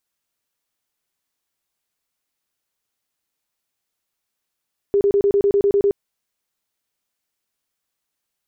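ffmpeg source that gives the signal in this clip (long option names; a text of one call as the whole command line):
ffmpeg -f lavfi -i "aevalsrc='0.237*sin(2*PI*402*mod(t,0.1))*lt(mod(t,0.1),28/402)':duration=1:sample_rate=44100" out.wav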